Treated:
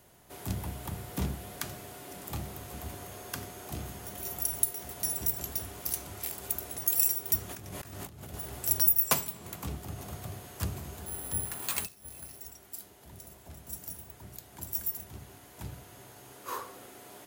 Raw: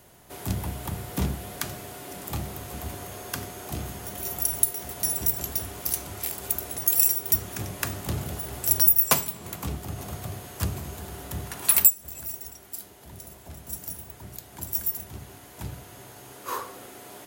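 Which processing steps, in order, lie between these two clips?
7.49–8.34 s: compressor with a negative ratio -39 dBFS, ratio -1; 11.06–12.39 s: careless resampling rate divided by 4×, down filtered, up zero stuff; trim -5.5 dB

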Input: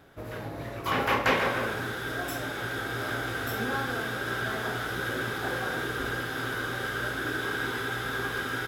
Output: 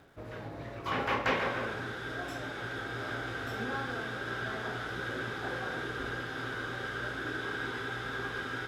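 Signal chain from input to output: Bessel low-pass 5.6 kHz, order 2; reverse; upward compressor, threshold -40 dBFS; reverse; crackle 530 per s -56 dBFS; trim -5 dB

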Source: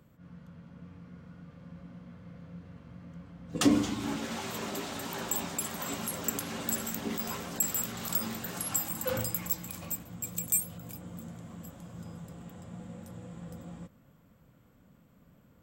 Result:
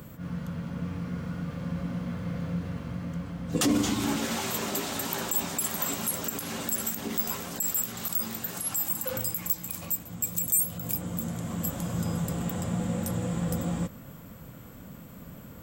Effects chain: in parallel at -1.5 dB: compression, threshold -41 dBFS, peak gain reduction 21.5 dB; on the sum: peak limiter -22 dBFS, peak gain reduction 10 dB; treble shelf 7.9 kHz +10 dB; gain riding 2 s

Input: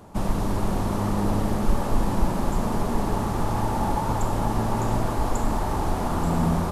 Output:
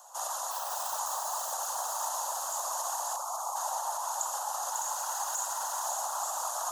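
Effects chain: 4.71–5.86 s: comb filter that takes the minimum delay 2.1 ms; peaking EQ 6.7 kHz +13.5 dB 0.25 oct; 0.51–0.99 s: sample-rate reducer 7.1 kHz, jitter 20%; steep high-pass 600 Hz 72 dB/octave; peak limiter -25.5 dBFS, peak gain reduction 10.5 dB; 3.16–3.56 s: spectral gate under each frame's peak -15 dB strong; whisper effect; tilt EQ +2 dB/octave; static phaser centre 920 Hz, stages 4; feedback echo behind a high-pass 547 ms, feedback 49%, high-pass 4.4 kHz, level -4 dB

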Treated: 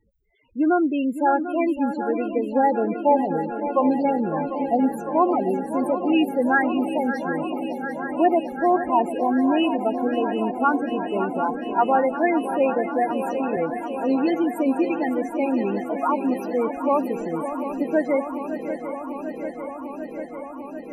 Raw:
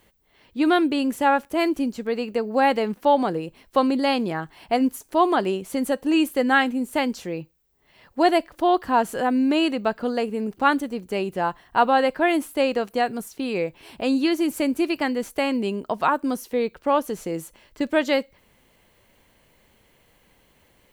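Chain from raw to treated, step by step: loudest bins only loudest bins 8; shuffle delay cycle 745 ms, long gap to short 3:1, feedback 79%, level -11 dB; 13.10–13.57 s: three bands compressed up and down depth 70%

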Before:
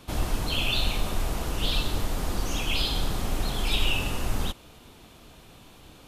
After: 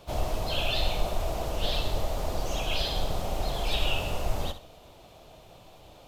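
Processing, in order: fifteen-band graphic EQ 250 Hz -7 dB, 630 Hz +11 dB, 1.6 kHz -6 dB, 10 kHz -6 dB; harmony voices -12 st -16 dB, +3 st -11 dB; on a send: flutter echo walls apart 11.4 m, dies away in 0.33 s; on the sum: trim -3 dB

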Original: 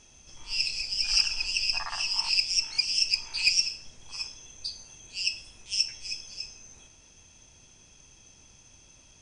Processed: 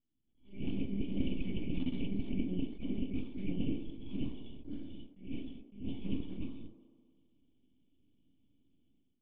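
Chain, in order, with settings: full-wave rectifier; cascade formant filter i; peaking EQ 2.2 kHz -13.5 dB 1.2 oct; reverse; compression 12:1, threshold -49 dBFS, peak gain reduction 17.5 dB; reverse; gate with hold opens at -57 dBFS; level rider gain up to 14.5 dB; on a send: feedback echo behind a band-pass 67 ms, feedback 77%, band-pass 560 Hz, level -11 dB; on the sum: attacks held to a fixed rise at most 140 dB/s; trim +7 dB

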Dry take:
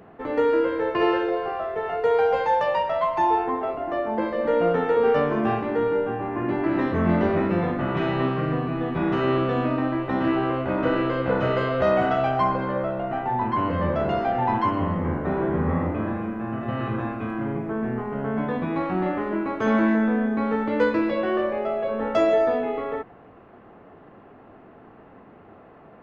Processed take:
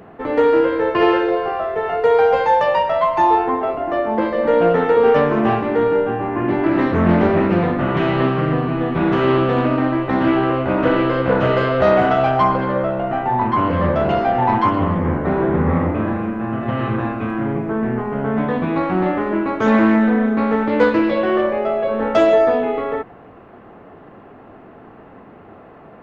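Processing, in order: loudspeaker Doppler distortion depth 0.26 ms; trim +6.5 dB

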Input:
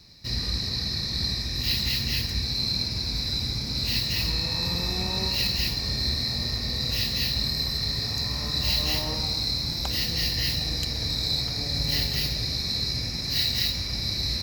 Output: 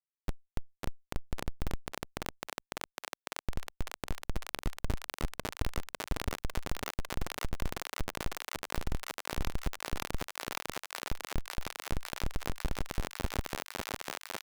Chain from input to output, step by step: rattle on loud lows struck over -39 dBFS, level -18 dBFS; reverb removal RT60 1.2 s; high-pass 100 Hz 12 dB/octave; peaking EQ 13 kHz +2.5 dB 1.3 oct; peak limiter -19.5 dBFS, peak gain reduction 7 dB; small resonant body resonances 350/1600/3500 Hz, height 8 dB, ringing for 25 ms; flange 0.32 Hz, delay 8.5 ms, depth 5.3 ms, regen -53%; Schmitt trigger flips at -23 dBFS; thinning echo 551 ms, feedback 83%, high-pass 490 Hz, level -3.5 dB; level flattener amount 50%; trim +7 dB

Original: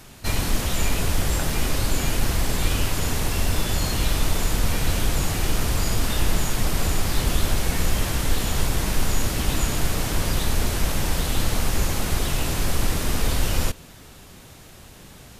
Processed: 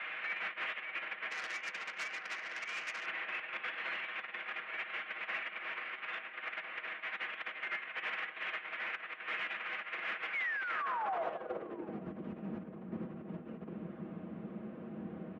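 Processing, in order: band-stop 980 Hz, Q 7.7; comb 6.8 ms, depth 57%; compressor with a negative ratio -28 dBFS, ratio -1; 10.33–11.27 s: painted sound fall 700–2400 Hz -39 dBFS; mistuned SSB -96 Hz 200–3200 Hz; overdrive pedal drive 24 dB, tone 1.2 kHz, clips at -14.5 dBFS; echo from a far wall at 140 m, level -8 dB; band-pass sweep 2.1 kHz -> 200 Hz, 10.64–12.07 s; 1.30–3.06 s: transformer saturation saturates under 3 kHz; trim -5 dB

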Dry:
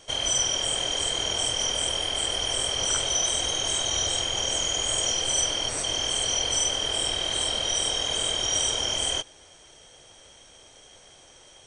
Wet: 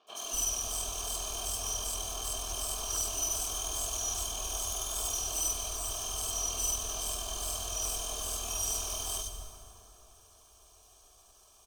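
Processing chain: comb filter that takes the minimum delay 1.7 ms; static phaser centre 530 Hz, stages 6; three bands offset in time mids, highs, lows 70/240 ms, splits 210/3600 Hz; on a send at -7 dB: reverberation RT60 3.6 s, pre-delay 68 ms; on the sum: trim -3.5 dB

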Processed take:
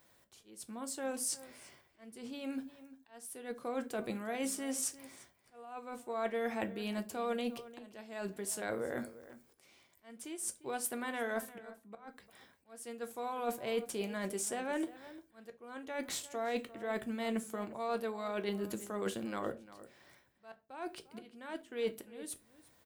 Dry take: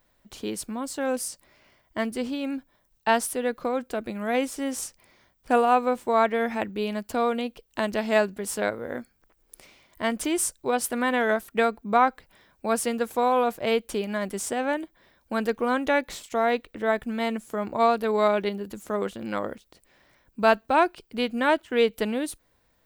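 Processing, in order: high-pass 86 Hz 12 dB/octave; peaking EQ 9.3 kHz +6 dB 1.5 oct; reverse; compression 16:1, threshold -34 dBFS, peak gain reduction 21 dB; reverse; slow attack 669 ms; echo from a far wall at 60 m, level -16 dB; on a send at -8 dB: reverberation RT60 0.30 s, pre-delay 3 ms

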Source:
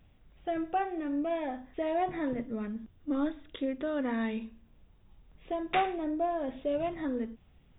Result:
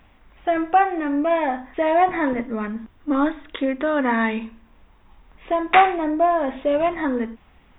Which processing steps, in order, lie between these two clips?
graphic EQ 125/250/1000/2000 Hz -8/+3/+10/+7 dB; trim +7.5 dB

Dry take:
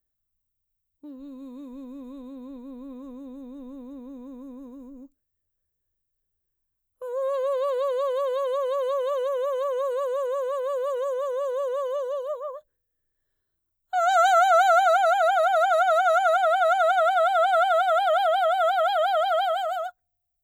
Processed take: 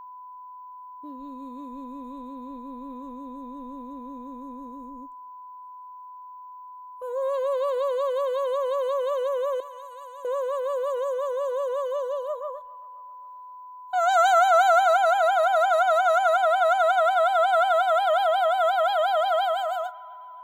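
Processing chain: 9.60–10.25 s: amplifier tone stack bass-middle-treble 5-5-5; feedback echo behind a band-pass 266 ms, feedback 52%, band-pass 1.4 kHz, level -20.5 dB; whistle 1 kHz -40 dBFS

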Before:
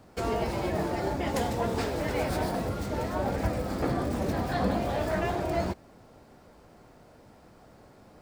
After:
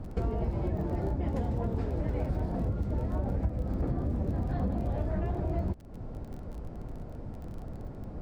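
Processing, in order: tilt EQ -4.5 dB/octave; compression 4:1, threshold -33 dBFS, peak gain reduction 21 dB; crackle 21 per s -44 dBFS; trim +2.5 dB

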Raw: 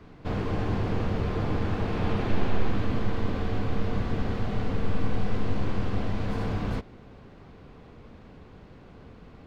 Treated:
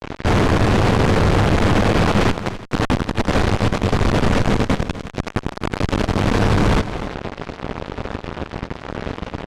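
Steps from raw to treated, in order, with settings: fuzz box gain 47 dB, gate -44 dBFS; distance through air 63 m; multi-tap echo 252/338 ms -14/-19.5 dB

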